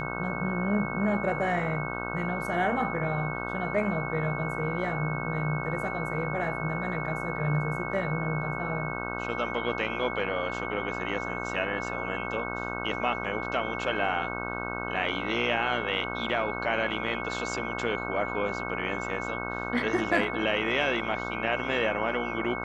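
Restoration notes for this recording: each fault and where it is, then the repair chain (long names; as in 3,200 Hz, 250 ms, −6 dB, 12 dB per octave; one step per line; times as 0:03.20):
mains buzz 60 Hz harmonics 26 −35 dBFS
whistle 2,200 Hz −36 dBFS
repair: notch filter 2,200 Hz, Q 30
hum removal 60 Hz, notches 26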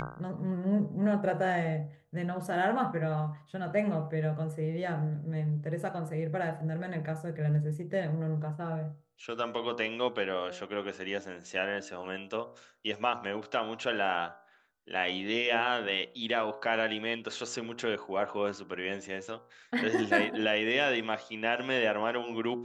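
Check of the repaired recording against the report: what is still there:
none of them is left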